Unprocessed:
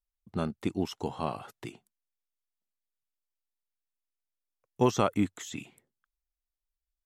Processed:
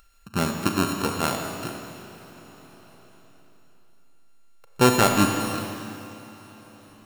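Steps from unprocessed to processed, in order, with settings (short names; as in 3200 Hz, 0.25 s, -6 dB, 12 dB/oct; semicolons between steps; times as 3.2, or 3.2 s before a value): sample sorter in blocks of 32 samples; Schroeder reverb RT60 2.9 s, combs from 28 ms, DRR 3 dB; upward compressor, threshold -46 dBFS; gain +6.5 dB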